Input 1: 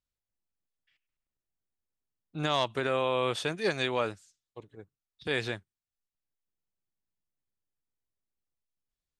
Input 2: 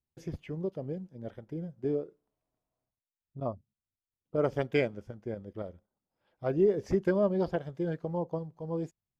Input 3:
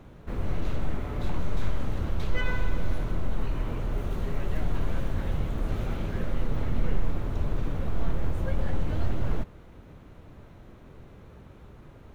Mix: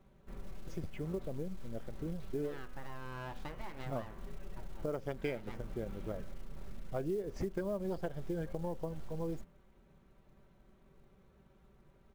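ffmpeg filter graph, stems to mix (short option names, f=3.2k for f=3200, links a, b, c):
-filter_complex "[0:a]lowpass=1.3k,bandreject=f=60:t=h:w=6,bandreject=f=120:t=h:w=6,bandreject=f=180:t=h:w=6,bandreject=f=240:t=h:w=6,bandreject=f=300:t=h:w=6,bandreject=f=360:t=h:w=6,aeval=exprs='abs(val(0))':c=same,volume=-0.5dB[a];[1:a]adelay=500,volume=-1.5dB[b];[2:a]aecho=1:1:5.2:0.64,volume=-16dB[c];[a][c]amix=inputs=2:normalize=0,bandreject=f=83.53:t=h:w=4,bandreject=f=167.06:t=h:w=4,bandreject=f=250.59:t=h:w=4,bandreject=f=334.12:t=h:w=4,bandreject=f=417.65:t=h:w=4,bandreject=f=501.18:t=h:w=4,bandreject=f=584.71:t=h:w=4,bandreject=f=668.24:t=h:w=4,bandreject=f=751.77:t=h:w=4,bandreject=f=835.3:t=h:w=4,bandreject=f=918.83:t=h:w=4,bandreject=f=1.00236k:t=h:w=4,bandreject=f=1.08589k:t=h:w=4,bandreject=f=1.16942k:t=h:w=4,bandreject=f=1.25295k:t=h:w=4,bandreject=f=1.33648k:t=h:w=4,bandreject=f=1.42001k:t=h:w=4,bandreject=f=1.50354k:t=h:w=4,bandreject=f=1.58707k:t=h:w=4,bandreject=f=1.6706k:t=h:w=4,bandreject=f=1.75413k:t=h:w=4,bandreject=f=1.83766k:t=h:w=4,bandreject=f=1.92119k:t=h:w=4,bandreject=f=2.00472k:t=h:w=4,bandreject=f=2.08825k:t=h:w=4,bandreject=f=2.17178k:t=h:w=4,bandreject=f=2.25531k:t=h:w=4,bandreject=f=2.33884k:t=h:w=4,bandreject=f=2.42237k:t=h:w=4,bandreject=f=2.5059k:t=h:w=4,bandreject=f=2.58943k:t=h:w=4,bandreject=f=2.67296k:t=h:w=4,bandreject=f=2.75649k:t=h:w=4,bandreject=f=2.84002k:t=h:w=4,bandreject=f=2.92355k:t=h:w=4,bandreject=f=3.00708k:t=h:w=4,bandreject=f=3.09061k:t=h:w=4,bandreject=f=3.17414k:t=h:w=4,bandreject=f=3.25767k:t=h:w=4,acompressor=threshold=-37dB:ratio=20,volume=0dB[d];[b][d]amix=inputs=2:normalize=0,acrusher=bits=7:mode=log:mix=0:aa=0.000001,acompressor=threshold=-34dB:ratio=5"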